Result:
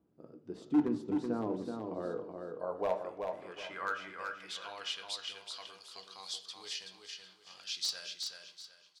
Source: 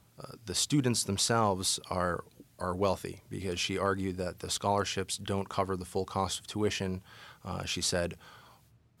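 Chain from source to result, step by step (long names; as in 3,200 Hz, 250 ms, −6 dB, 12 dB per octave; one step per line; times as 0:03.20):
hollow resonant body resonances 1,600/2,900 Hz, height 7 dB, ringing for 60 ms
band-pass filter sweep 320 Hz → 4,400 Hz, 0:01.88–0:05.24
wave folding −24.5 dBFS
repeating echo 377 ms, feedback 29%, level −5 dB
on a send at −7 dB: convolution reverb RT60 0.60 s, pre-delay 3 ms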